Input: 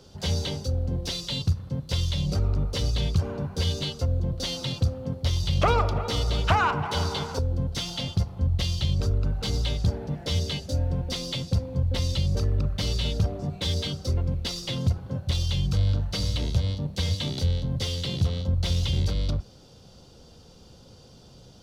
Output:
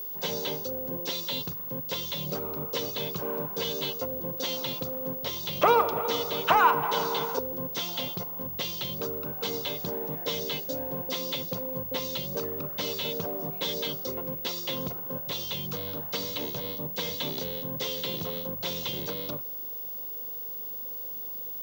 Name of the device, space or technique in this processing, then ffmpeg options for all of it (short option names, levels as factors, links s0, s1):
old television with a line whistle: -af "highpass=f=190:w=0.5412,highpass=f=190:w=1.3066,equalizer=f=210:t=q:w=4:g=-7,equalizer=f=460:t=q:w=4:g=4,equalizer=f=1000:t=q:w=4:g=6,equalizer=f=4700:t=q:w=4:g=-6,lowpass=f=7200:w=0.5412,lowpass=f=7200:w=1.3066,aeval=exprs='val(0)+0.02*sin(2*PI*15625*n/s)':c=same"